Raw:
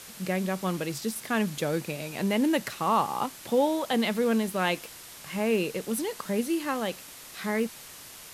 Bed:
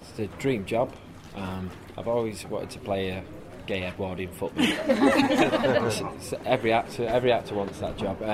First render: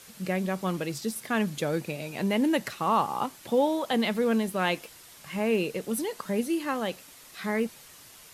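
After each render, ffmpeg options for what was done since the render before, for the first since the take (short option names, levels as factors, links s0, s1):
-af "afftdn=nr=6:nf=-46"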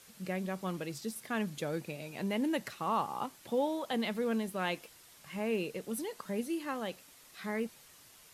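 -af "volume=0.422"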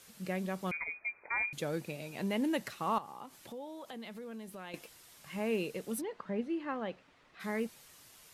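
-filter_complex "[0:a]asettb=1/sr,asplit=3[s0][s1][s2];[s0]atrim=end=0.714[s3];[s1]atrim=start=0.71:end=1.53,asetpts=PTS-STARTPTS,afade=t=in:d=0.004:c=qsin,afade=t=out:st=0.816:d=0.004:c=qsin,lowpass=f=2200:t=q:w=0.5098,lowpass=f=2200:t=q:w=0.6013,lowpass=f=2200:t=q:w=0.9,lowpass=f=2200:t=q:w=2.563,afreqshift=-2600[s4];[s2]atrim=start=1.526[s5];[s3][s4]acrossfade=d=0.004:c1=hsin:c2=qsin[s6];[s6][s5]acrossfade=d=0.004:c1=qsin:c2=hsin,asettb=1/sr,asplit=3[s7][s8][s9];[s7]atrim=end=2.984[s10];[s8]atrim=start=2.98:end=4.74,asetpts=PTS-STARTPTS,afade=t=in:d=0.004:c=qsin,afade=t=out:st=1.756:d=0.004:c=qsin,acompressor=threshold=0.00501:ratio=3:attack=3.2:release=140:knee=1:detection=peak[s11];[s9]atrim=start=4.736[s12];[s10][s11]acrossfade=d=0.004:c1=hsin:c2=qsin[s13];[s13][s12]acrossfade=d=0.004:c1=qsin:c2=hsin,asplit=3[s14][s15][s16];[s14]afade=t=out:st=6:d=0.02[s17];[s15]lowpass=2300,afade=t=in:st=6:d=0.02,afade=t=out:st=7.39:d=0.02[s18];[s16]afade=t=in:st=7.39:d=0.02[s19];[s17][s18][s19]amix=inputs=3:normalize=0"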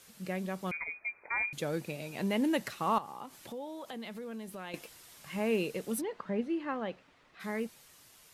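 -af "dynaudnorm=f=310:g=11:m=1.41"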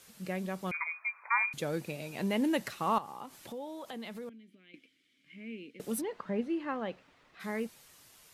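-filter_complex "[0:a]asettb=1/sr,asplit=3[s0][s1][s2];[s0]atrim=end=0.744[s3];[s1]atrim=start=0.74:end=1.54,asetpts=PTS-STARTPTS,afade=t=in:d=0.004:c=qsin,afade=t=out:st=0.796:d=0.004:c=qsin,highpass=f=1100:t=q:w=4.4[s4];[s2]atrim=start=1.536[s5];[s3][s4]acrossfade=d=0.004:c1=hsin:c2=qsin[s6];[s6][s5]acrossfade=d=0.004:c1=qsin:c2=hsin,asettb=1/sr,asplit=3[s7][s8][s9];[s7]atrim=end=4.294[s10];[s8]atrim=start=4.29:end=5.8,asetpts=PTS-STARTPTS,afade=t=in:d=0.004:c=qsin,afade=t=out:st=1.506:d=0.004:c=qsin,asplit=3[s11][s12][s13];[s11]bandpass=f=270:t=q:w=8,volume=1[s14];[s12]bandpass=f=2290:t=q:w=8,volume=0.501[s15];[s13]bandpass=f=3010:t=q:w=8,volume=0.355[s16];[s14][s15][s16]amix=inputs=3:normalize=0[s17];[s9]atrim=start=5.796[s18];[s10][s17]acrossfade=d=0.004:c1=hsin:c2=qsin[s19];[s19][s18]acrossfade=d=0.004:c1=qsin:c2=hsin"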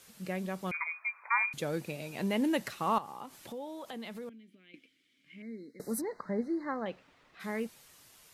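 -filter_complex "[0:a]asettb=1/sr,asplit=3[s0][s1][s2];[s0]atrim=end=5.424[s3];[s1]atrim=start=5.42:end=6.86,asetpts=PTS-STARTPTS,afade=t=in:d=0.004:c=qsin,afade=t=out:st=1.436:d=0.004:c=qsin,asuperstop=centerf=2900:order=20:qfactor=1.7[s4];[s2]atrim=start=6.856[s5];[s3][s4]acrossfade=d=0.004:c1=hsin:c2=qsin[s6];[s6][s5]acrossfade=d=0.004:c1=qsin:c2=hsin"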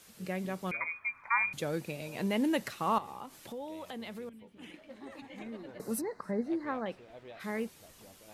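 -filter_complex "[1:a]volume=0.0422[s0];[0:a][s0]amix=inputs=2:normalize=0"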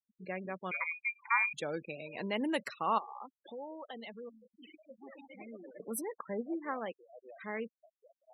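-af "highpass=f=420:p=1,afftfilt=real='re*gte(hypot(re,im),0.00891)':imag='im*gte(hypot(re,im),0.00891)':win_size=1024:overlap=0.75"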